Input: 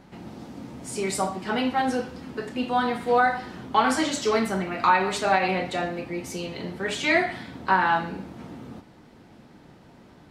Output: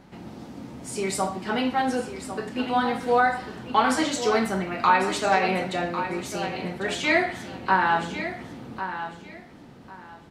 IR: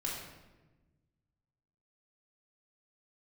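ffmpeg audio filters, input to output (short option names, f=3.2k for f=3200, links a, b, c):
-af "aecho=1:1:1099|2198|3297:0.299|0.0627|0.0132"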